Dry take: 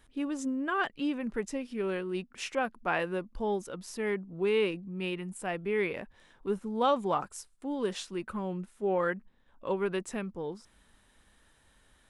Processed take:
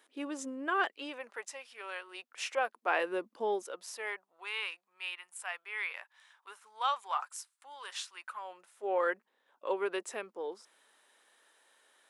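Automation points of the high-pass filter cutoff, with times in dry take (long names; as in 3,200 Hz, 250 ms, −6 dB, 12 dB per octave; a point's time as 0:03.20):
high-pass filter 24 dB per octave
0:00.81 340 Hz
0:01.51 720 Hz
0:02.01 720 Hz
0:03.33 280 Hz
0:04.48 930 Hz
0:08.20 930 Hz
0:09.07 390 Hz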